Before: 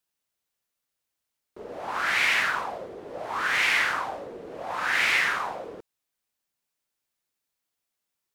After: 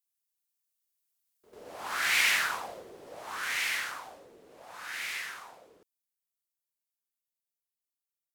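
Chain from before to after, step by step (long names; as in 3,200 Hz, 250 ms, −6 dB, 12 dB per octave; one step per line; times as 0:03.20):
source passing by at 0:02.32, 8 m/s, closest 6.1 metres
first-order pre-emphasis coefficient 0.8
backwards echo 95 ms −11 dB
level +6.5 dB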